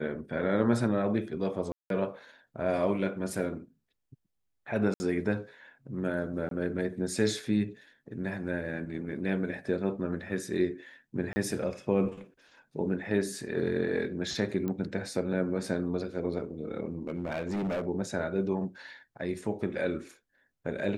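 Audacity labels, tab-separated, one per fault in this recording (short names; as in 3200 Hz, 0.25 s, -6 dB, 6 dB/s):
1.720000	1.900000	gap 0.182 s
4.940000	5.000000	gap 60 ms
6.490000	6.510000	gap 22 ms
11.330000	11.360000	gap 30 ms
14.680000	14.680000	pop -22 dBFS
17.070000	17.850000	clipped -28 dBFS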